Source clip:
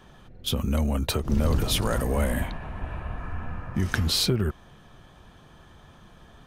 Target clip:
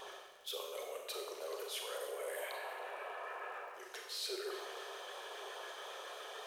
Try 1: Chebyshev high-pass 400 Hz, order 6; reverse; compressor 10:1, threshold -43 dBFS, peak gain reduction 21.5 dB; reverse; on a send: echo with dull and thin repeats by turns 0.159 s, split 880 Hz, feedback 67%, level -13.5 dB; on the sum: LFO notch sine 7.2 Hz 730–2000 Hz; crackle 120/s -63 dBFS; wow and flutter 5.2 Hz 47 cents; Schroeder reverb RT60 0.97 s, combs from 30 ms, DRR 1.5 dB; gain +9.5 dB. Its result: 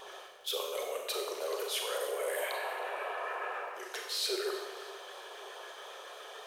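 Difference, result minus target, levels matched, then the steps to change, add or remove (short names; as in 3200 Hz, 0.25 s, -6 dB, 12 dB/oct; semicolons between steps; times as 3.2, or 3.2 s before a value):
compressor: peak gain reduction -7.5 dB
change: compressor 10:1, threshold -51.5 dBFS, peak gain reduction 29.5 dB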